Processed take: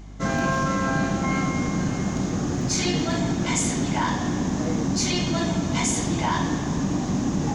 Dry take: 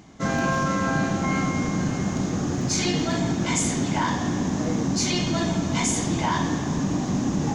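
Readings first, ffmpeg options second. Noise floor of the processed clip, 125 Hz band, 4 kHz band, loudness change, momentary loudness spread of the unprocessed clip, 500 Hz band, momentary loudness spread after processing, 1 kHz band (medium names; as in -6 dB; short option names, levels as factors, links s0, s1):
-28 dBFS, 0.0 dB, 0.0 dB, 0.0 dB, 3 LU, 0.0 dB, 3 LU, 0.0 dB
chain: -af "aeval=exprs='val(0)+0.0112*(sin(2*PI*50*n/s)+sin(2*PI*2*50*n/s)/2+sin(2*PI*3*50*n/s)/3+sin(2*PI*4*50*n/s)/4+sin(2*PI*5*50*n/s)/5)':c=same"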